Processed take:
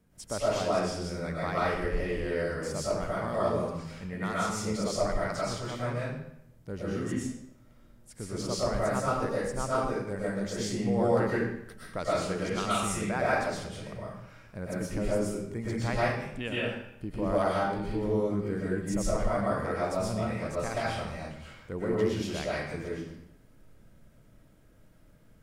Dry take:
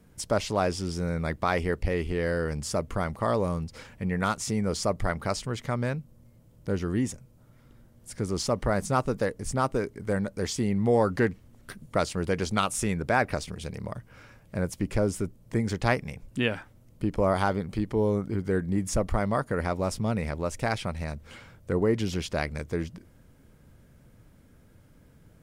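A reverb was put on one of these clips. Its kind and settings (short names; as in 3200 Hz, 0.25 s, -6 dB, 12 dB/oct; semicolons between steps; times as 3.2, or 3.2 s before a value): digital reverb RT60 0.76 s, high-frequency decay 0.9×, pre-delay 80 ms, DRR -7.5 dB; gain -10 dB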